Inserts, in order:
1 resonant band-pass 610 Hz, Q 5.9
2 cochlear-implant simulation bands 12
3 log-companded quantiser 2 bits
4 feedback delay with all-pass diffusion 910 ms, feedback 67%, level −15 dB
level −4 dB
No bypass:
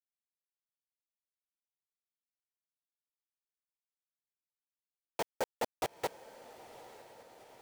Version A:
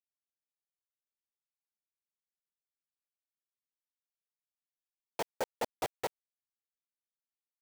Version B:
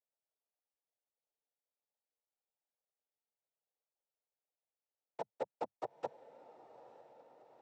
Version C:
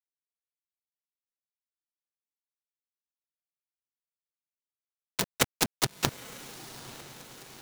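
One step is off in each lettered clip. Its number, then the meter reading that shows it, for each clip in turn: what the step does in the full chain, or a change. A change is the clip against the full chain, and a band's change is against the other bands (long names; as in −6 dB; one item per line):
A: 4, echo-to-direct ratio −12.5 dB to none audible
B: 3, distortion level −5 dB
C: 1, 500 Hz band −12.5 dB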